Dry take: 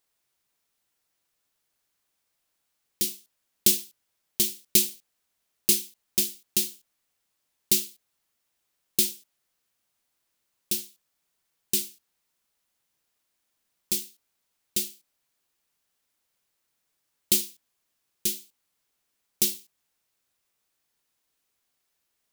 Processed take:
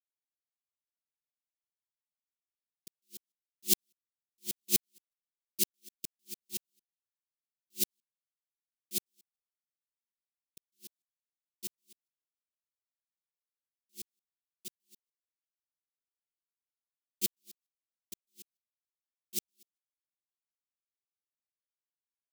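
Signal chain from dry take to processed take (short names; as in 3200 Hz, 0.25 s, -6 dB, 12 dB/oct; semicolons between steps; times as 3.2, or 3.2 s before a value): local time reversal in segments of 0.151 s; upward expander 2.5:1, over -37 dBFS; gain -5 dB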